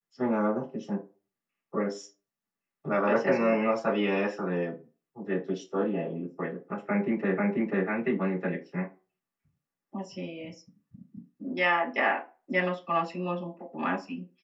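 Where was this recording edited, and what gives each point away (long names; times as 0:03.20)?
0:07.38: the same again, the last 0.49 s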